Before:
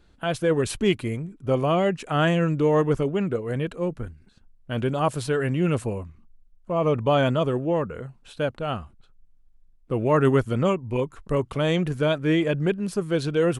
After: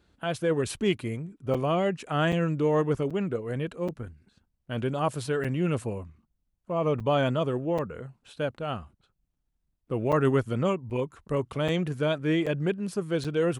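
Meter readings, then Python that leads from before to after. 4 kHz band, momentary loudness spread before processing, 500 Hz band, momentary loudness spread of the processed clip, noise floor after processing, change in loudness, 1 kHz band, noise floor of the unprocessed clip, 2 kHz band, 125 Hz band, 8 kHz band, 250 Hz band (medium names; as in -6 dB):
-4.0 dB, 10 LU, -4.0 dB, 10 LU, -78 dBFS, -4.0 dB, -4.0 dB, -57 dBFS, -4.0 dB, -4.0 dB, -4.0 dB, -4.0 dB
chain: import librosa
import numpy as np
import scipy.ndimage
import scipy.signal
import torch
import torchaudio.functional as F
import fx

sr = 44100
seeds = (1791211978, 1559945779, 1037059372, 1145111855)

y = scipy.signal.sosfilt(scipy.signal.butter(2, 56.0, 'highpass', fs=sr, output='sos'), x)
y = fx.buffer_crackle(y, sr, first_s=0.76, period_s=0.78, block=256, kind='zero')
y = F.gain(torch.from_numpy(y), -4.0).numpy()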